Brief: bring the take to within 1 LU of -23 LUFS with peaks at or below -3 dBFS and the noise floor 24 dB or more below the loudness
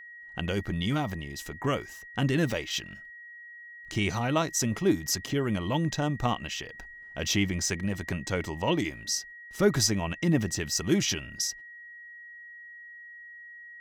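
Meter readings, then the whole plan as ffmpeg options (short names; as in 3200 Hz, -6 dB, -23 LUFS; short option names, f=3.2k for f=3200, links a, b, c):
steady tone 1900 Hz; tone level -44 dBFS; loudness -29.0 LUFS; peak -10.0 dBFS; loudness target -23.0 LUFS
-> -af "bandreject=f=1.9k:w=30"
-af "volume=6dB"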